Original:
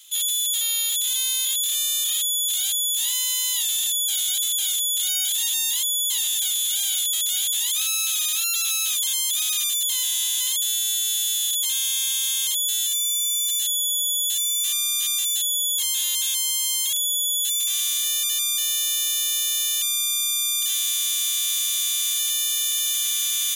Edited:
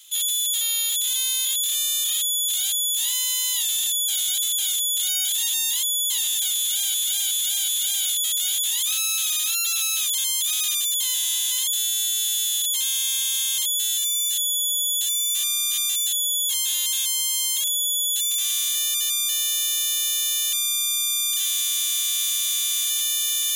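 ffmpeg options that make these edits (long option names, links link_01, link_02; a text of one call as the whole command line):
ffmpeg -i in.wav -filter_complex "[0:a]asplit=5[link_01][link_02][link_03][link_04][link_05];[link_01]atrim=end=6.942[link_06];[link_02]atrim=start=6.568:end=6.942[link_07];[link_03]atrim=start=6.568:end=6.942[link_08];[link_04]atrim=start=6.568:end=13.182[link_09];[link_05]atrim=start=13.578[link_10];[link_06][link_07]acrossfade=duration=0.004:curve1=hsin:curve2=hsin[link_11];[link_11][link_08]acrossfade=duration=0.004:curve1=hsin:curve2=hsin[link_12];[link_12][link_09]acrossfade=duration=0.004:curve1=hsin:curve2=hsin[link_13];[link_13][link_10]acrossfade=duration=0.004:curve1=hsin:curve2=hsin" out.wav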